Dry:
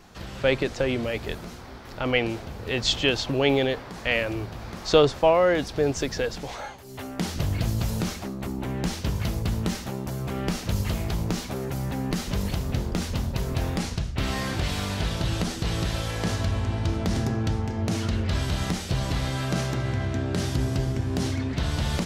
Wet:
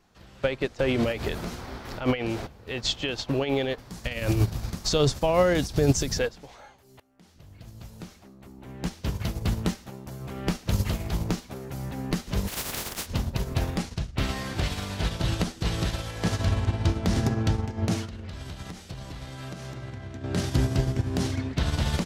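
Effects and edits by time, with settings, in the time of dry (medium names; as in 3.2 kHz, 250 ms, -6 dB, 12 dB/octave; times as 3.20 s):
0.79–2.47 s: level flattener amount 50%
3.78–6.19 s: tone controls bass +10 dB, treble +13 dB
7.00–10.27 s: fade in equal-power, from -21.5 dB
12.47–13.05 s: spectral contrast reduction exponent 0.27
18.04–20.24 s: compression 16:1, threshold -26 dBFS
whole clip: peak limiter -16.5 dBFS; upward expansion 2.5:1, over -34 dBFS; trim +6.5 dB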